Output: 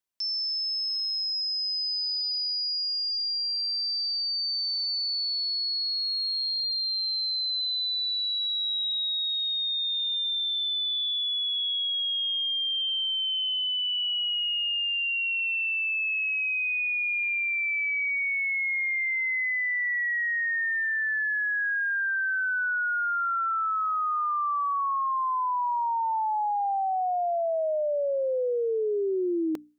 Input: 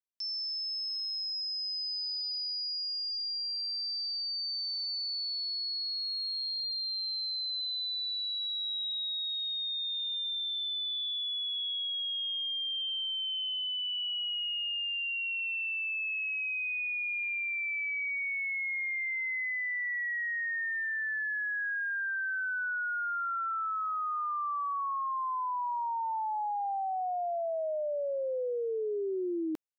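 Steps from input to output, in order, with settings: hum notches 60/120/180/240/300 Hz; trim +6 dB

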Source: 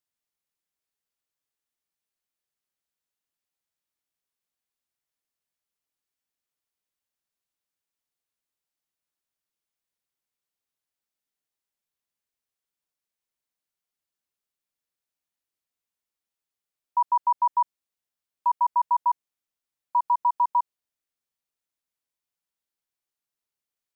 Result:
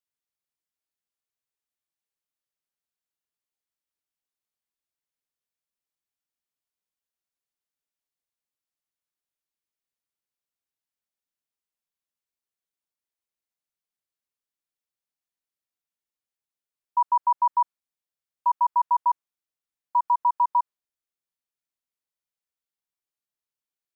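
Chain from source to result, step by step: dynamic bell 1.2 kHz, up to +7 dB, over -35 dBFS, Q 1; trim -5 dB

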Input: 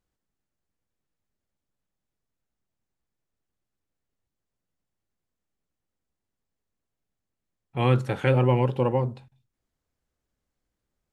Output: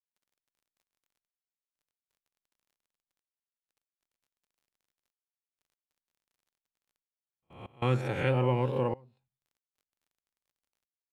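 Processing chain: reverse spectral sustain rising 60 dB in 0.70 s; gate with hold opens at -47 dBFS; crackle 43 per s -54 dBFS; trance gate ".xxxxxxx...x" 94 bpm -24 dB; trim -7 dB

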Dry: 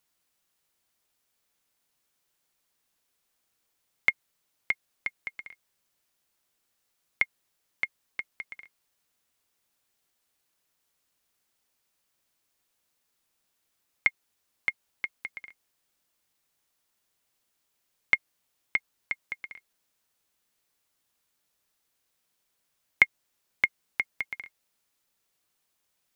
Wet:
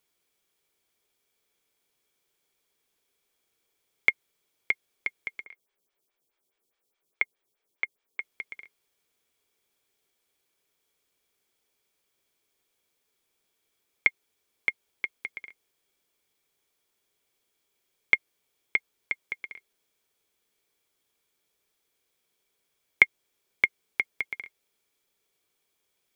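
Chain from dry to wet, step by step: small resonant body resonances 410/2300/3300 Hz, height 10 dB, ringing for 25 ms; 5.44–8.20 s: lamp-driven phase shifter 4.8 Hz; trim -1 dB

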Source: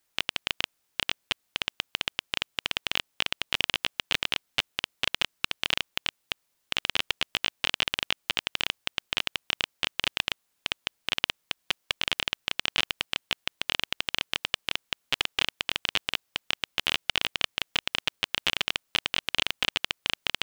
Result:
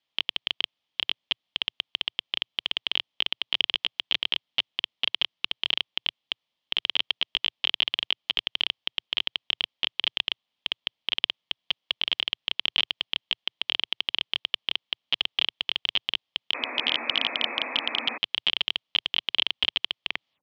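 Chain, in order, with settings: tape stop on the ending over 0.40 s; painted sound noise, 16.54–18.18 s, 220–2600 Hz -30 dBFS; cabinet simulation 100–4500 Hz, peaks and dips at 120 Hz -3 dB, 390 Hz -8 dB, 1.5 kHz -9 dB, 3.2 kHz +10 dB; trim -3.5 dB

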